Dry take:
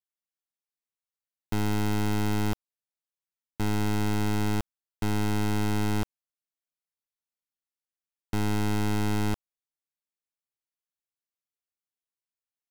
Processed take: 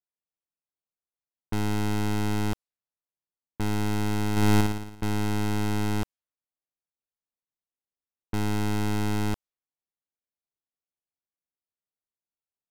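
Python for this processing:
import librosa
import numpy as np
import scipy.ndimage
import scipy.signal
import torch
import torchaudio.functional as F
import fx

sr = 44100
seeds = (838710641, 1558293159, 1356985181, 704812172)

y = fx.env_lowpass(x, sr, base_hz=950.0, full_db=-29.5)
y = fx.room_flutter(y, sr, wall_m=9.8, rt60_s=0.82, at=(4.31, 5.04))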